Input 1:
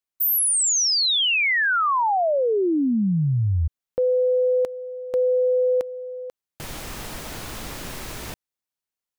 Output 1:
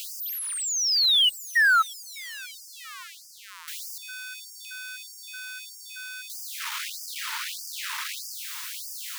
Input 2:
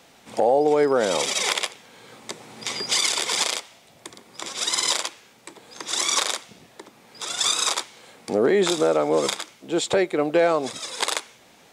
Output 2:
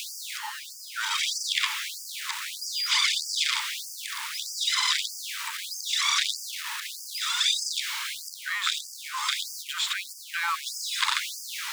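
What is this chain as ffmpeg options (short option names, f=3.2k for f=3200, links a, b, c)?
-filter_complex "[0:a]aeval=exprs='val(0)+0.5*0.0596*sgn(val(0))':c=same,acrossover=split=4700[a][b];[b]acompressor=threshold=-35dB:ratio=4:attack=1:release=60[c];[a][c]amix=inputs=2:normalize=0,afftfilt=real='re*gte(b*sr/1024,830*pow(4700/830,0.5+0.5*sin(2*PI*1.6*pts/sr)))':imag='im*gte(b*sr/1024,830*pow(4700/830,0.5+0.5*sin(2*PI*1.6*pts/sr)))':win_size=1024:overlap=0.75"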